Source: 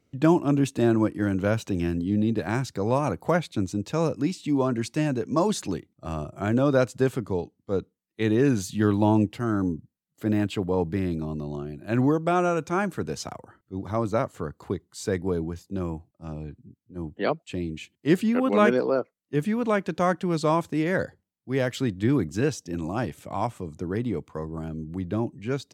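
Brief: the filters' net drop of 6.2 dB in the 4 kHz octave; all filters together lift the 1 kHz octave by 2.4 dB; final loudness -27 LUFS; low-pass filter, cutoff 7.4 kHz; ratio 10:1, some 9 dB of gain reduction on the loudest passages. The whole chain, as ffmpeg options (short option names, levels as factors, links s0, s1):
-af "lowpass=7400,equalizer=f=1000:t=o:g=3.5,equalizer=f=4000:t=o:g=-8,acompressor=threshold=0.0708:ratio=10,volume=1.5"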